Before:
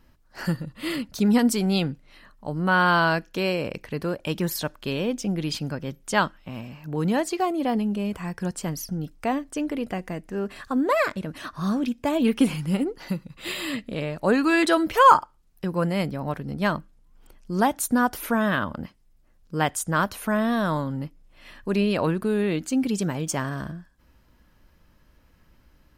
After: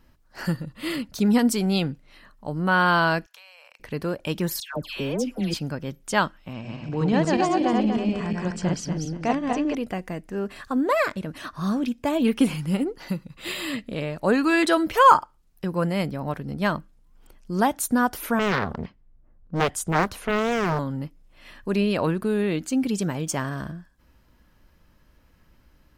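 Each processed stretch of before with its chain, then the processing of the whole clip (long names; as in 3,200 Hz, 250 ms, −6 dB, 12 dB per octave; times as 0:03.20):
0:03.26–0:03.80: inverse Chebyshev high-pass filter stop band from 310 Hz, stop band 50 dB + downward compressor 8 to 1, threshold −45 dBFS + saturating transformer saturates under 3,300 Hz
0:04.60–0:05.54: all-pass dispersion lows, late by 142 ms, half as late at 1,400 Hz + hard clipping −16 dBFS
0:06.53–0:09.75: feedback delay that plays each chunk backwards 120 ms, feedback 53%, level −1 dB + low-pass filter 6,900 Hz 24 dB per octave
0:18.39–0:20.79: low-pass that shuts in the quiet parts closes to 1,100 Hz, open at −23.5 dBFS + low-shelf EQ 230 Hz +5 dB + highs frequency-modulated by the lows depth 0.98 ms
whole clip: no processing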